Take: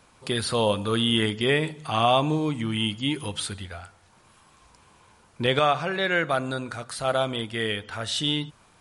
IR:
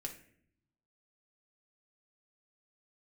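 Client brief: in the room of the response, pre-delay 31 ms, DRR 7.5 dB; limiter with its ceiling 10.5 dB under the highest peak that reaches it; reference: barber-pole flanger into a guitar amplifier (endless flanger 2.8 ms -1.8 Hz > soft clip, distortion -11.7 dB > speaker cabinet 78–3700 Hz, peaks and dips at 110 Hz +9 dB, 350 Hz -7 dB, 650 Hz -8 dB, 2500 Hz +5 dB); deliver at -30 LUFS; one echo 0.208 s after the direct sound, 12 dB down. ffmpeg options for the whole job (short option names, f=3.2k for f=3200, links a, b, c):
-filter_complex "[0:a]alimiter=limit=-19dB:level=0:latency=1,aecho=1:1:208:0.251,asplit=2[a][b];[1:a]atrim=start_sample=2205,adelay=31[c];[b][c]afir=irnorm=-1:irlink=0,volume=-5.5dB[d];[a][d]amix=inputs=2:normalize=0,asplit=2[e][f];[f]adelay=2.8,afreqshift=-1.8[g];[e][g]amix=inputs=2:normalize=1,asoftclip=threshold=-29.5dB,highpass=78,equalizer=f=110:t=q:w=4:g=9,equalizer=f=350:t=q:w=4:g=-7,equalizer=f=650:t=q:w=4:g=-8,equalizer=f=2.5k:t=q:w=4:g=5,lowpass=f=3.7k:w=0.5412,lowpass=f=3.7k:w=1.3066,volume=5dB"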